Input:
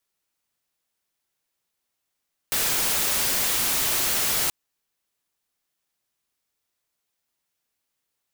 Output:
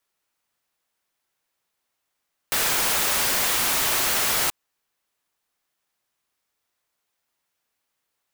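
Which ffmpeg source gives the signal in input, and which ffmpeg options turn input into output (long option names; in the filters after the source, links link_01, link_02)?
-f lavfi -i "anoisesrc=color=white:amplitude=0.116:duration=1.98:sample_rate=44100:seed=1"
-af "equalizer=frequency=1100:width=0.46:gain=5.5"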